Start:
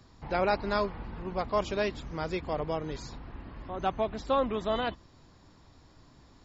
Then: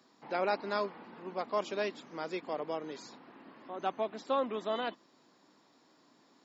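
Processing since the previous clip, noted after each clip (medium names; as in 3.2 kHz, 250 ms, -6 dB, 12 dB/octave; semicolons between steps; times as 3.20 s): high-pass 220 Hz 24 dB/octave; trim -4 dB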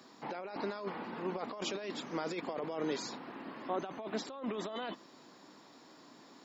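compressor with a negative ratio -41 dBFS, ratio -1; trim +2.5 dB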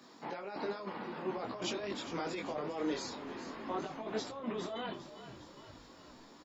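frequency-shifting echo 406 ms, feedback 56%, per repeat -44 Hz, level -12.5 dB; detune thickener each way 18 cents; trim +3.5 dB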